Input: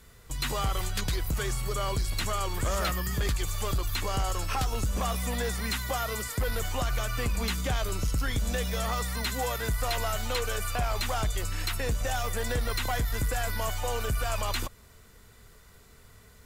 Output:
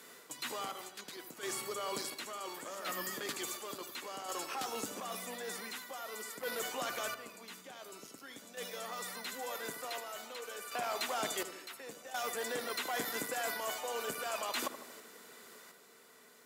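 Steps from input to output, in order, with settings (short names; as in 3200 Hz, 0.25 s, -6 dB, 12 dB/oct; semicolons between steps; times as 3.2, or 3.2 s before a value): HPF 250 Hz 24 dB/oct; reverse; compressor 10:1, threshold -41 dBFS, peak gain reduction 15 dB; reverse; random-step tremolo 1.4 Hz, depth 80%; tape echo 79 ms, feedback 64%, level -9 dB, low-pass 1300 Hz; gain +7.5 dB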